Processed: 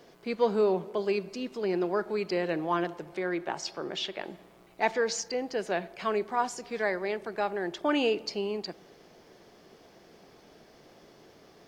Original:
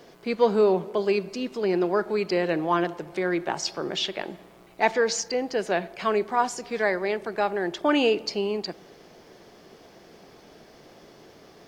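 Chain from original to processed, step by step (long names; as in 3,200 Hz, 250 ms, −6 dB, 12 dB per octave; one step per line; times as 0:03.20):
0:03.14–0:04.24: bass and treble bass −3 dB, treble −3 dB
level −5 dB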